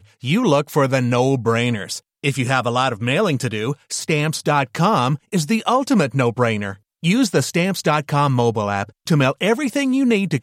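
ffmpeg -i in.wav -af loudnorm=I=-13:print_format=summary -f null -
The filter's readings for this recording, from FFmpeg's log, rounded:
Input Integrated:    -18.9 LUFS
Input True Peak:      -2.8 dBTP
Input LRA:             1.2 LU
Input Threshold:     -29.0 LUFS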